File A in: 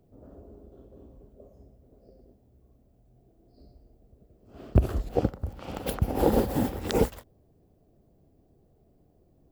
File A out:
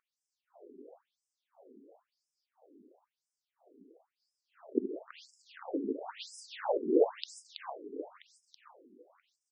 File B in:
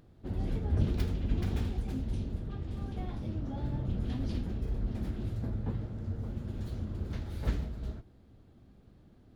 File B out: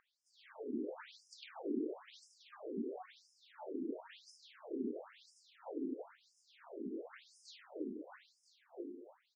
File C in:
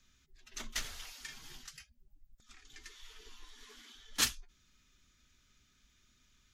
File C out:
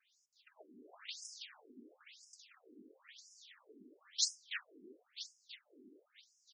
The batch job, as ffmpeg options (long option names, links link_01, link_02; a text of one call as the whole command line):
ffmpeg -i in.wav -filter_complex "[0:a]aeval=exprs='val(0)+0.00251*(sin(2*PI*60*n/s)+sin(2*PI*2*60*n/s)/2+sin(2*PI*3*60*n/s)/3+sin(2*PI*4*60*n/s)/4+sin(2*PI*5*60*n/s)/5)':channel_layout=same,asplit=9[link_01][link_02][link_03][link_04][link_05][link_06][link_07][link_08][link_09];[link_02]adelay=327,afreqshift=73,volume=-4dB[link_10];[link_03]adelay=654,afreqshift=146,volume=-8.7dB[link_11];[link_04]adelay=981,afreqshift=219,volume=-13.5dB[link_12];[link_05]adelay=1308,afreqshift=292,volume=-18.2dB[link_13];[link_06]adelay=1635,afreqshift=365,volume=-22.9dB[link_14];[link_07]adelay=1962,afreqshift=438,volume=-27.7dB[link_15];[link_08]adelay=2289,afreqshift=511,volume=-32.4dB[link_16];[link_09]adelay=2616,afreqshift=584,volume=-37.1dB[link_17];[link_01][link_10][link_11][link_12][link_13][link_14][link_15][link_16][link_17]amix=inputs=9:normalize=0,afftfilt=real='re*between(b*sr/1024,300*pow(7100/300,0.5+0.5*sin(2*PI*0.98*pts/sr))/1.41,300*pow(7100/300,0.5+0.5*sin(2*PI*0.98*pts/sr))*1.41)':imag='im*between(b*sr/1024,300*pow(7100/300,0.5+0.5*sin(2*PI*0.98*pts/sr))/1.41,300*pow(7100/300,0.5+0.5*sin(2*PI*0.98*pts/sr))*1.41)':win_size=1024:overlap=0.75" out.wav